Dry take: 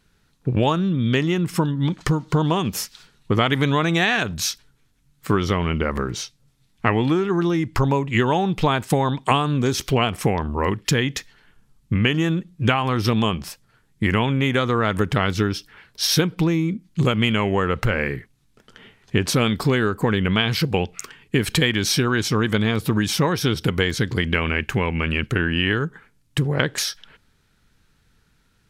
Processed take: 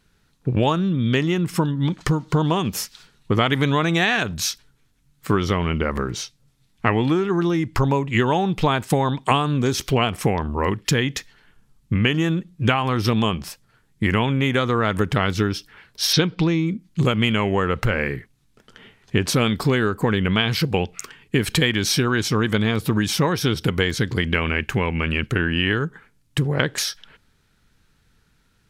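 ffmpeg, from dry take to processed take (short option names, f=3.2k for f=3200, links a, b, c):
-filter_complex "[0:a]asplit=3[a][b][c];[a]afade=t=out:st=16.12:d=0.02[d];[b]lowpass=f=4.6k:t=q:w=1.7,afade=t=in:st=16.12:d=0.02,afade=t=out:st=16.65:d=0.02[e];[c]afade=t=in:st=16.65:d=0.02[f];[d][e][f]amix=inputs=3:normalize=0"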